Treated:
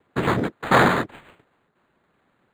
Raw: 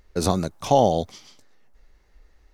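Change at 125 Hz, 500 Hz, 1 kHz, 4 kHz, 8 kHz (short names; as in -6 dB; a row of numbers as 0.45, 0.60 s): +0.5, -2.5, +2.0, +1.5, -7.5 dB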